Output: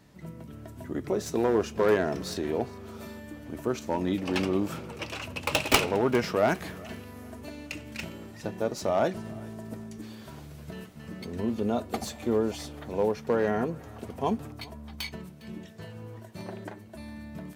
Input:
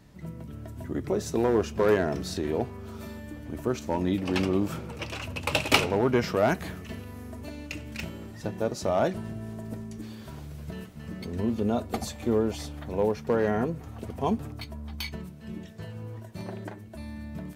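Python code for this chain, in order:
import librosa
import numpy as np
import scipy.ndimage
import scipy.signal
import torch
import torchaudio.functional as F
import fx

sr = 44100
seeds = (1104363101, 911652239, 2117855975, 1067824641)

y = fx.tracing_dist(x, sr, depth_ms=0.14)
y = fx.low_shelf(y, sr, hz=110.0, db=-9.5)
y = fx.echo_thinned(y, sr, ms=406, feedback_pct=33, hz=420.0, wet_db=-22.0)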